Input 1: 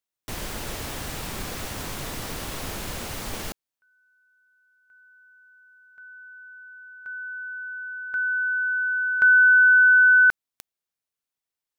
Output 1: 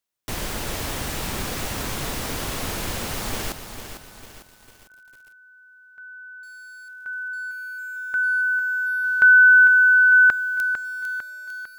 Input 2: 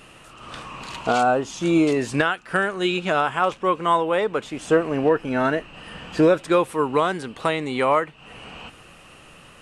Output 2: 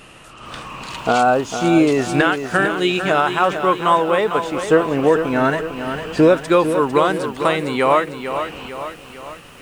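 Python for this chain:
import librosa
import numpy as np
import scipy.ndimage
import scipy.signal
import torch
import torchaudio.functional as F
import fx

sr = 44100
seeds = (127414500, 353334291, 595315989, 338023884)

y = fx.echo_crushed(x, sr, ms=451, feedback_pct=55, bits=8, wet_db=-8.5)
y = y * librosa.db_to_amplitude(4.0)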